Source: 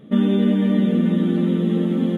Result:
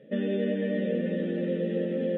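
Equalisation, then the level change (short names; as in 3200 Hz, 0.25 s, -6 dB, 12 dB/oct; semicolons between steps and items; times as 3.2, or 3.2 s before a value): vowel filter e; bell 140 Hz +9.5 dB 0.98 oct; +6.0 dB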